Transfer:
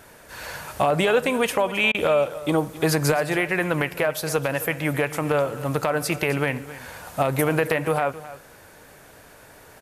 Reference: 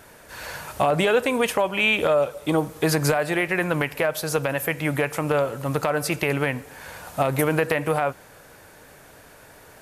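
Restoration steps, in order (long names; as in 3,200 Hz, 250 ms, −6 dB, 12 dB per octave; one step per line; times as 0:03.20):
repair the gap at 0:01.92, 24 ms
echo removal 266 ms −16 dB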